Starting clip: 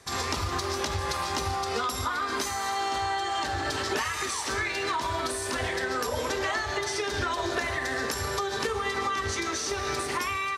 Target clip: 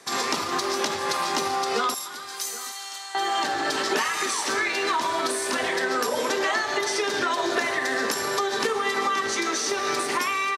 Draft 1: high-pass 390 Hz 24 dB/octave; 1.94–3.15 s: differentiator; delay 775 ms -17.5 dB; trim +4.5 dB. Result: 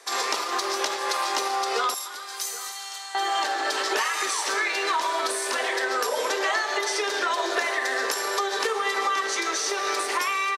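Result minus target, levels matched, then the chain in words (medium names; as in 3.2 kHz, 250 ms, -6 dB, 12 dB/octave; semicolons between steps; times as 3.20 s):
250 Hz band -6.5 dB
high-pass 180 Hz 24 dB/octave; 1.94–3.15 s: differentiator; delay 775 ms -17.5 dB; trim +4.5 dB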